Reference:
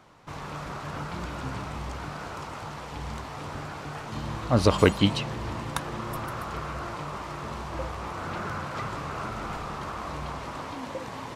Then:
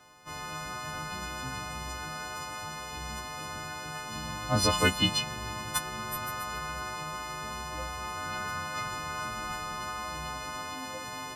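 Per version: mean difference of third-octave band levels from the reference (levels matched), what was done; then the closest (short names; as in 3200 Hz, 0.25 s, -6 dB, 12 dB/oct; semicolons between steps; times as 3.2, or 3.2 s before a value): 6.0 dB: frequency quantiser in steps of 3 st; dynamic EQ 430 Hz, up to -6 dB, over -43 dBFS, Q 1.6; gain -4 dB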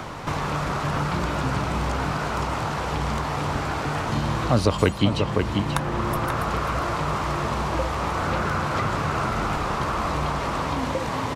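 3.5 dB: outdoor echo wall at 92 m, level -7 dB; three-band squash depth 70%; gain +8 dB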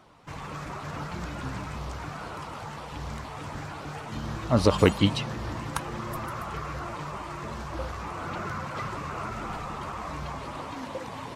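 1.0 dB: bin magnitudes rounded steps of 15 dB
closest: third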